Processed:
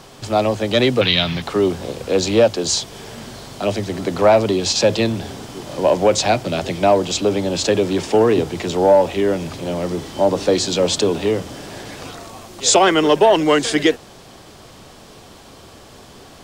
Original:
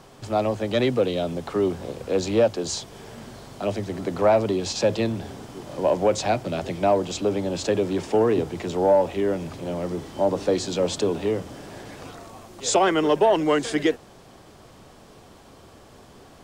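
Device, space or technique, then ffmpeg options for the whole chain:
presence and air boost: -filter_complex "[0:a]asettb=1/sr,asplit=3[a][b][c];[a]atrim=end=1.014[d];[b]atrim=start=1.01:end=1.42,asetpts=PTS-STARTPTS,afade=t=in:d=0.004:c=qsin,afade=t=out:st=0.406:d=0.004:c=qsin,equalizer=f=125:t=o:w=1:g=11,equalizer=f=250:t=o:w=1:g=-4,equalizer=f=500:t=o:w=1:g=-11,equalizer=f=1k:t=o:w=1:g=4,equalizer=f=2k:t=o:w=1:g=12,equalizer=f=4k:t=o:w=1:g=10,equalizer=f=8k:t=o:w=1:g=-11[e];[c]atrim=start=1.416[f];[d][e]acrossfade=d=0.004:c1=hsin:c2=qsin[g];[g][f]acrossfade=d=0.004:c1=qsin:c2=hsin,equalizer=f=4k:t=o:w=1.9:g=5,highshelf=f=9k:g=4.5,volume=5.5dB"

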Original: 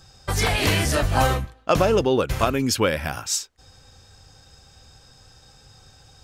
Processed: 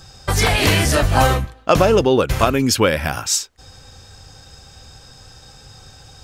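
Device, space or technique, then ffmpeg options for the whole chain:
parallel compression: -filter_complex "[0:a]asplit=2[a][b];[b]acompressor=threshold=-30dB:ratio=6,volume=-5dB[c];[a][c]amix=inputs=2:normalize=0,volume=4dB"

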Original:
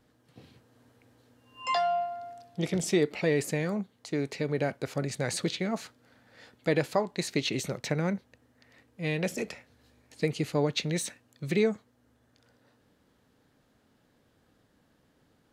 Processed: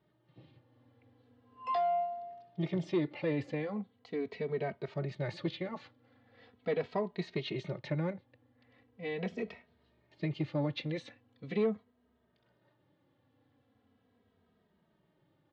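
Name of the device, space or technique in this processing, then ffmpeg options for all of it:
barber-pole flanger into a guitar amplifier: -filter_complex "[0:a]asplit=2[a][b];[b]adelay=2.8,afreqshift=-0.4[c];[a][c]amix=inputs=2:normalize=1,asoftclip=type=tanh:threshold=-21dB,highpass=82,equalizer=f=96:t=q:w=4:g=5,equalizer=f=1.5k:t=q:w=4:g=-6,equalizer=f=2.5k:t=q:w=4:g=-4,lowpass=f=3.5k:w=0.5412,lowpass=f=3.5k:w=1.3066,volume=-1.5dB"

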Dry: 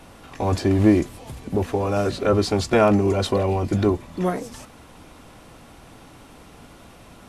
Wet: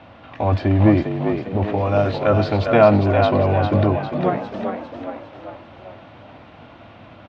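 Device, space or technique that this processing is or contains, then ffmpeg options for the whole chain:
frequency-shifting delay pedal into a guitar cabinet: -filter_complex "[0:a]asettb=1/sr,asplit=3[a][b][c];[a]atrim=end=1.784[d];[b]atrim=start=1.78:end=2.44,asetpts=PTS-STARTPTS,afade=t=in:d=0.004:c=qsin,afade=t=out:st=0.656:d=0.004:c=qsin,aemphasis=mode=production:type=cd[e];[c]atrim=start=2.436[f];[d][e]acrossfade=d=0.004:c1=hsin:c2=qsin[g];[g][f]acrossfade=d=0.004:c1=qsin:c2=hsin,asplit=7[h][i][j][k][l][m][n];[i]adelay=402,afreqshift=48,volume=-6dB[o];[j]adelay=804,afreqshift=96,volume=-12dB[p];[k]adelay=1206,afreqshift=144,volume=-18dB[q];[l]adelay=1608,afreqshift=192,volume=-24.1dB[r];[m]adelay=2010,afreqshift=240,volume=-30.1dB[s];[n]adelay=2412,afreqshift=288,volume=-36.1dB[t];[h][o][p][q][r][s][t]amix=inputs=7:normalize=0,highpass=85,equalizer=f=100:t=q:w=4:g=6,equalizer=f=170:t=q:w=4:g=-4,equalizer=f=410:t=q:w=4:g=-8,equalizer=f=630:t=q:w=4:g=6,lowpass=f=3.5k:w=0.5412,lowpass=f=3.5k:w=1.3066,volume=2dB"

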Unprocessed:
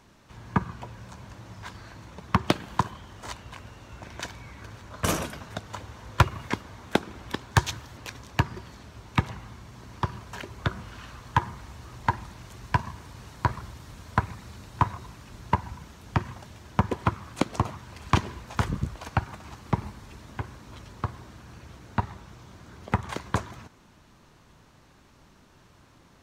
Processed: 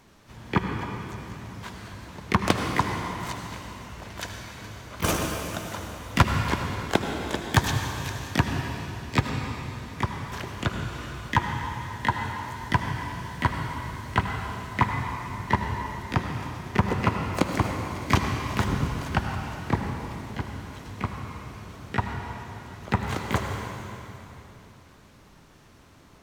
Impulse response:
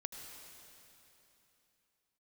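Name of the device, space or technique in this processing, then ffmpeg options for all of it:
shimmer-style reverb: -filter_complex "[0:a]asplit=3[a][b][c];[a]afade=t=out:st=11.73:d=0.02[d];[b]highpass=f=78:w=0.5412,highpass=f=78:w=1.3066,afade=t=in:st=11.73:d=0.02,afade=t=out:st=12.55:d=0.02[e];[c]afade=t=in:st=12.55:d=0.02[f];[d][e][f]amix=inputs=3:normalize=0,asplit=2[g][h];[h]asetrate=88200,aresample=44100,atempo=0.5,volume=-7dB[i];[g][i]amix=inputs=2:normalize=0[j];[1:a]atrim=start_sample=2205[k];[j][k]afir=irnorm=-1:irlink=0,volume=4dB"

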